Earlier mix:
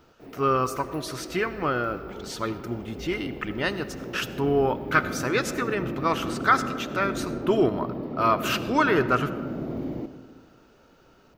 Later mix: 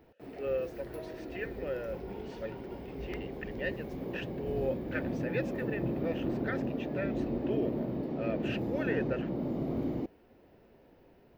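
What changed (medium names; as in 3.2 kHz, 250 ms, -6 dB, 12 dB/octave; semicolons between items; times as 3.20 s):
speech: add vowel filter e; reverb: off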